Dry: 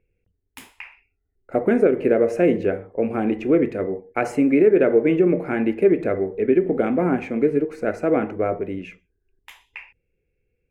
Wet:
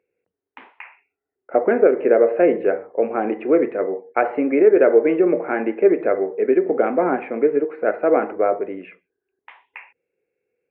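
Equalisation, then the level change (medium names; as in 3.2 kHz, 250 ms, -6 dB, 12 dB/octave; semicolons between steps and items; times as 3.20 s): Gaussian low-pass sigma 4.3 samples; high-pass 500 Hz 12 dB/octave; +7.5 dB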